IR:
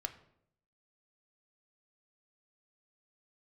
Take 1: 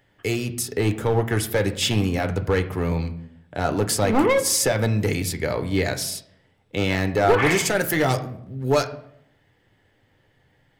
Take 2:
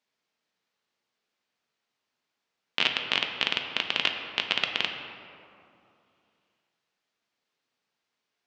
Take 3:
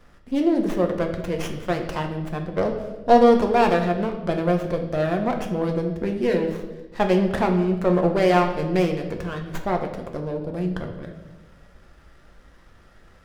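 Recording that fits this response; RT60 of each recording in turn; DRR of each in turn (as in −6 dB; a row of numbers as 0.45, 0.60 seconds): 1; 0.70, 2.7, 1.1 seconds; 6.5, 3.0, 3.0 decibels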